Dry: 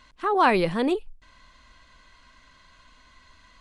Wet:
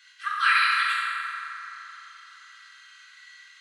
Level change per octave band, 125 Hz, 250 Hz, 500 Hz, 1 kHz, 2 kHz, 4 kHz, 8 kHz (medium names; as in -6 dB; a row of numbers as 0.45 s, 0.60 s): under -40 dB, under -40 dB, under -40 dB, -1.5 dB, +8.5 dB, +7.5 dB, +7.0 dB